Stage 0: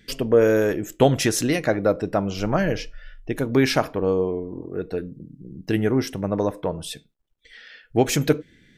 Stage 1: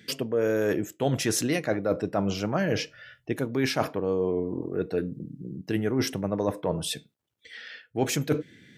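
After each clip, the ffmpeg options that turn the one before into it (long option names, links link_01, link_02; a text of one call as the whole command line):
ffmpeg -i in.wav -af "highpass=frequency=91:width=0.5412,highpass=frequency=91:width=1.3066,areverse,acompressor=threshold=-25dB:ratio=6,areverse,volume=2.5dB" out.wav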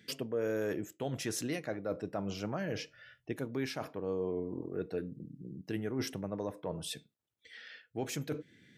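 ffmpeg -i in.wav -af "alimiter=limit=-16.5dB:level=0:latency=1:release=331,volume=-8dB" out.wav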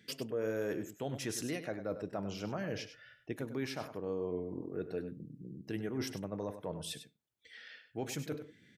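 ffmpeg -i in.wav -af "aecho=1:1:99:0.282,volume=-2dB" out.wav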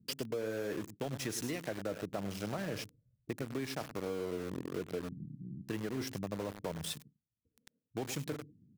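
ffmpeg -i in.wav -filter_complex "[0:a]acrossover=split=270[link_01][link_02];[link_02]aeval=exprs='val(0)*gte(abs(val(0)),0.0075)':channel_layout=same[link_03];[link_01][link_03]amix=inputs=2:normalize=0,acompressor=threshold=-38dB:ratio=6,volume=4.5dB" out.wav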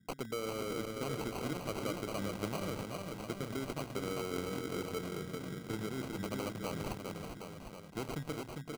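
ffmpeg -i in.wav -af "aecho=1:1:400|760|1084|1376|1638:0.631|0.398|0.251|0.158|0.1,acrusher=samples=25:mix=1:aa=0.000001,volume=-1.5dB" out.wav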